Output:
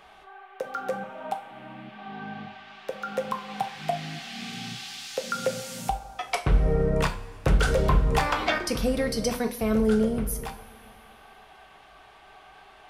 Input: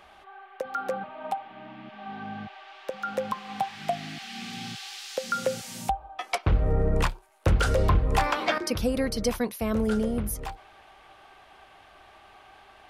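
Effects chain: two-slope reverb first 0.35 s, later 2.7 s, from -18 dB, DRR 5 dB

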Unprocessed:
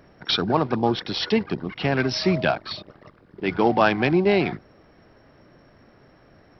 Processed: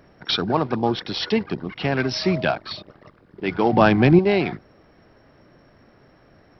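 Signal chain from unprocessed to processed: 3.73–4.19 low shelf 340 Hz +11.5 dB

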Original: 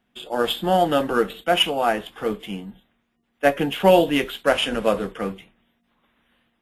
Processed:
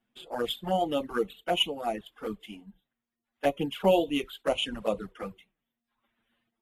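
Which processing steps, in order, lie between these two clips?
reverb removal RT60 0.97 s; envelope flanger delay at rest 8.9 ms, full sweep at -17 dBFS; gain -6 dB

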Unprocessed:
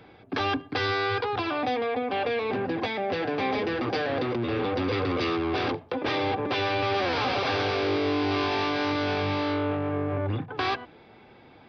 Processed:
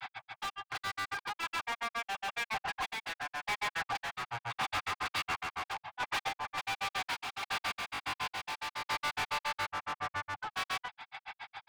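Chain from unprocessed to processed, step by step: elliptic band-stop 140–790 Hz; low shelf 490 Hz -10 dB; soft clip -30.5 dBFS, distortion -12 dB; grains 86 ms, grains 7.2/s, pitch spread up and down by 0 st; overdrive pedal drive 35 dB, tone 3500 Hz, clips at -21.5 dBFS; random-step tremolo; gain -3 dB

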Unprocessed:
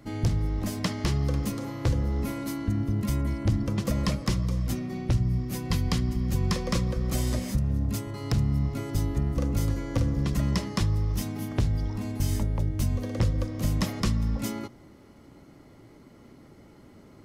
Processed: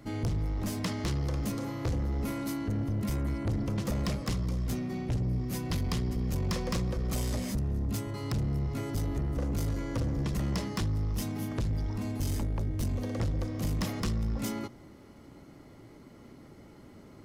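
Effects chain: soft clip -26 dBFS, distortion -10 dB

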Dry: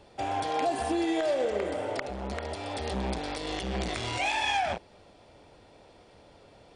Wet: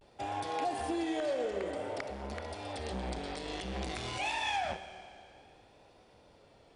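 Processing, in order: Schroeder reverb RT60 2.4 s, combs from 28 ms, DRR 10.5 dB; vibrato 0.54 Hz 64 cents; gain -6 dB

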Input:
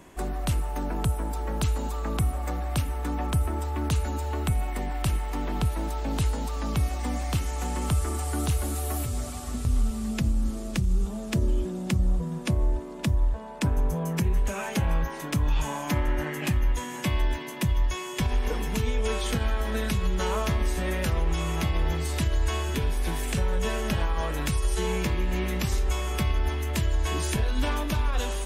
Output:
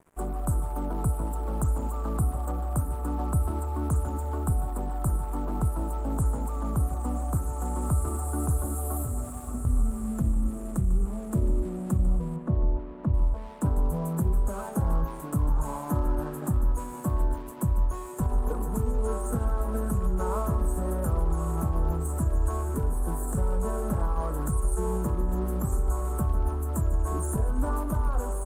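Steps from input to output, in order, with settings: elliptic band-stop 1300–7900 Hz; crossover distortion -49 dBFS; 12.36–13.14 air absorption 310 m; echo 0.147 s -16 dB

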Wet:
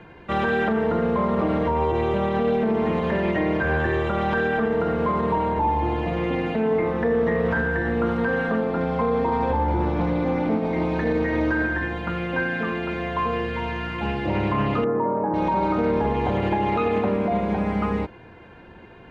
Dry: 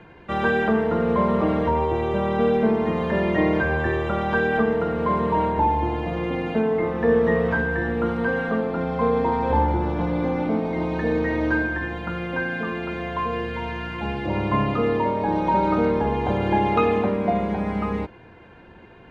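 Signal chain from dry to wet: limiter -15.5 dBFS, peak gain reduction 7.5 dB; 14.84–15.34 Chebyshev band-pass 130–1400 Hz, order 3; Doppler distortion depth 0.11 ms; gain +1.5 dB

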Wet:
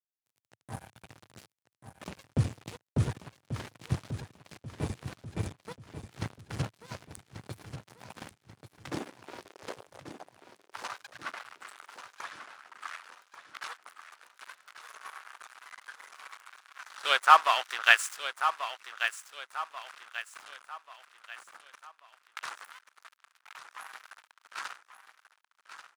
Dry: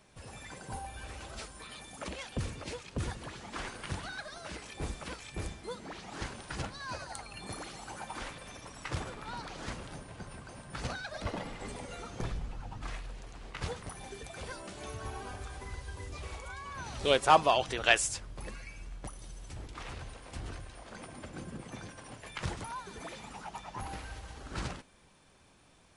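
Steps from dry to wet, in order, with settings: tilt shelf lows +3 dB, about 640 Hz; crossover distortion -37.5 dBFS; high-pass sweep 110 Hz -> 1300 Hz, 7.78–11.19; feedback echo 1.137 s, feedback 40%, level -10 dB; gain +5 dB

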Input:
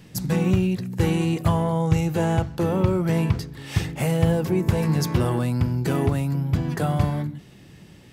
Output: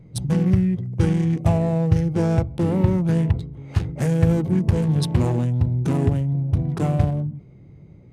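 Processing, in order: Wiener smoothing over 25 samples; formant shift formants -4 st; gain +2.5 dB

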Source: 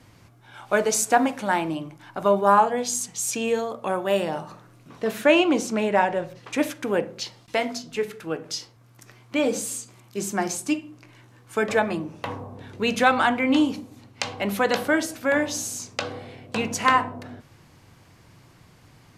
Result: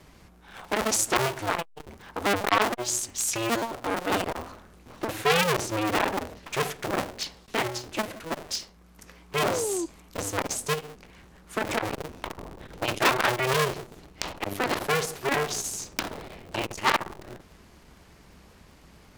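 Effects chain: cycle switcher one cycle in 2, inverted; painted sound fall, 9.4–9.86, 320–640 Hz -28 dBFS; core saturation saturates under 2900 Hz

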